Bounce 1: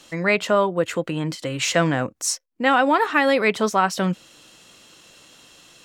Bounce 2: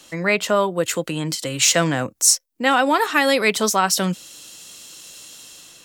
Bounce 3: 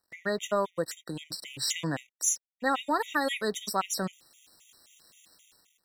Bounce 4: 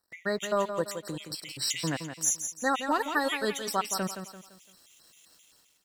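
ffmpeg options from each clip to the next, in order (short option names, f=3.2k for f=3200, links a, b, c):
-filter_complex "[0:a]highshelf=f=8.4k:g=9,acrossover=split=120|3600[a][b][c];[c]dynaudnorm=f=240:g=5:m=9.5dB[d];[a][b][d]amix=inputs=3:normalize=0"
-af "aeval=exprs='sgn(val(0))*max(abs(val(0))-0.0075,0)':c=same,afftfilt=real='re*gt(sin(2*PI*3.8*pts/sr)*(1-2*mod(floor(b*sr/1024/1900),2)),0)':imag='im*gt(sin(2*PI*3.8*pts/sr)*(1-2*mod(floor(b*sr/1024/1900),2)),0)':win_size=1024:overlap=0.75,volume=-8.5dB"
-af "aecho=1:1:170|340|510|680:0.376|0.143|0.0543|0.0206"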